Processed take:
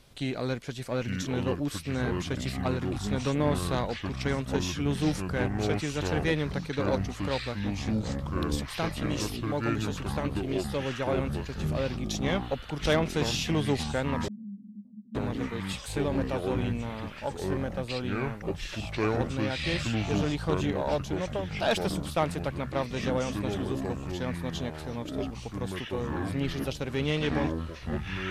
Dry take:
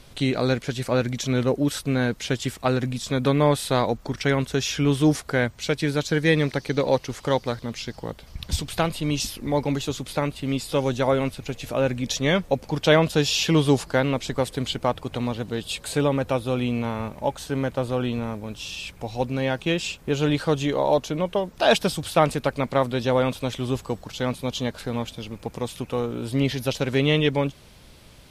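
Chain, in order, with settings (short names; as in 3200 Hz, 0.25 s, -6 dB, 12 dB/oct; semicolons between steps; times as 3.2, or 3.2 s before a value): echoes that change speed 0.777 s, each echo -6 st, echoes 3; added harmonics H 6 -21 dB, 8 -32 dB, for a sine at -4 dBFS; 14.28–15.15 Butterworth band-pass 210 Hz, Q 7.9; gain -8.5 dB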